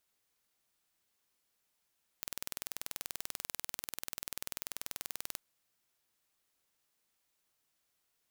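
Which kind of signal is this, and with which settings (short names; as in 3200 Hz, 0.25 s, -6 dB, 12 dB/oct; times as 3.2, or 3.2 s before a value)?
pulse train 20.5/s, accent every 0, -11 dBFS 3.16 s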